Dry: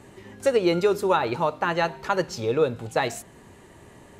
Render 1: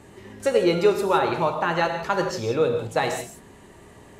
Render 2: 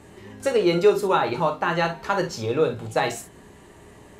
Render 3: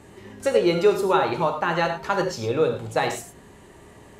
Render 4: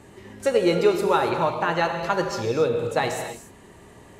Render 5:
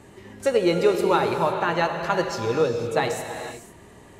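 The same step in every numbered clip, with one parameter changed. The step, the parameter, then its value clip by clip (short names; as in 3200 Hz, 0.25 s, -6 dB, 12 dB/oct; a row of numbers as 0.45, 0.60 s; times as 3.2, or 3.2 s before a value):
non-linear reverb, gate: 200, 80, 130, 310, 530 ms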